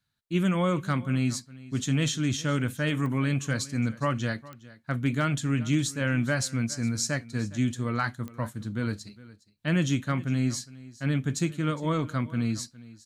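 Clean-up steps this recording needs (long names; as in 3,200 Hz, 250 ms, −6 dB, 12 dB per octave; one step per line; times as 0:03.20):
clipped peaks rebuilt −15.5 dBFS
click removal
echo removal 411 ms −19.5 dB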